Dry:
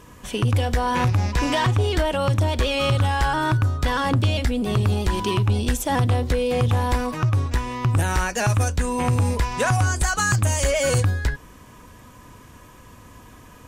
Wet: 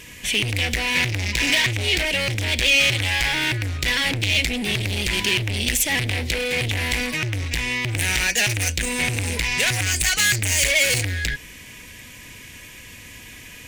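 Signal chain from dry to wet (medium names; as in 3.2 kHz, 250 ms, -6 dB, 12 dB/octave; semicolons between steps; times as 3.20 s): hard clipper -24 dBFS, distortion -8 dB; resonant high shelf 1.6 kHz +10.5 dB, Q 3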